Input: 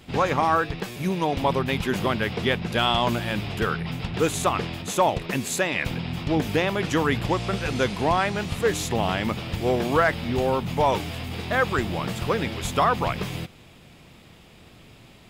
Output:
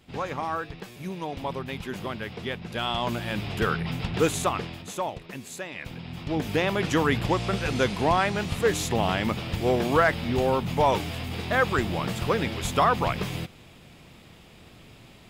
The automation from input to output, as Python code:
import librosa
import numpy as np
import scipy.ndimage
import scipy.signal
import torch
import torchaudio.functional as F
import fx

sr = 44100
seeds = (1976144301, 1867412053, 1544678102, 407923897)

y = fx.gain(x, sr, db=fx.line((2.59, -9.0), (3.69, 0.0), (4.24, 0.0), (5.23, -12.0), (5.75, -12.0), (6.71, -0.5)))